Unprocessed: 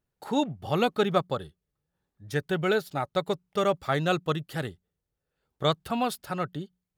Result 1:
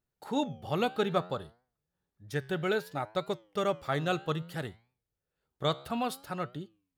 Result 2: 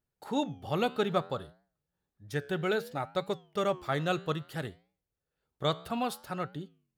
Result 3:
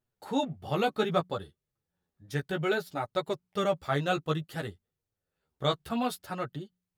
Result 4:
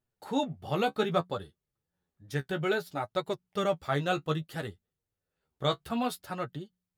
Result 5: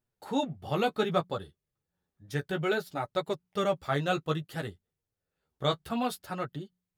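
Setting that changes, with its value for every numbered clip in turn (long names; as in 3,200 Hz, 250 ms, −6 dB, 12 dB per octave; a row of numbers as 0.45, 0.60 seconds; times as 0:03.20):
flanger, regen: +88, −88, +5, +28, −16%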